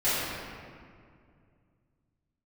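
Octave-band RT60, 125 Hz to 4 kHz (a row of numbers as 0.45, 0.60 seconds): 3.4, 2.9, 2.3, 2.1, 1.8, 1.3 seconds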